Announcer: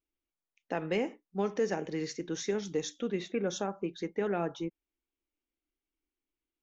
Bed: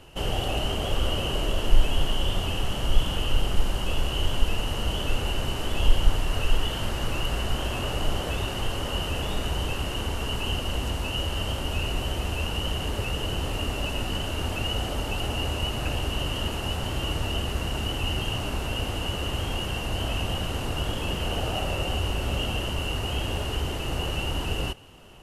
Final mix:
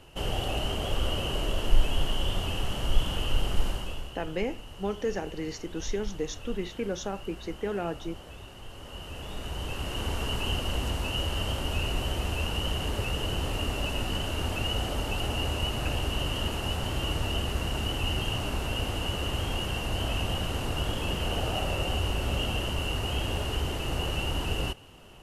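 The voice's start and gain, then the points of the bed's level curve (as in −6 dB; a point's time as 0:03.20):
3.45 s, 0.0 dB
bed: 0:03.68 −3 dB
0:04.19 −16.5 dB
0:08.62 −16.5 dB
0:10.11 −1.5 dB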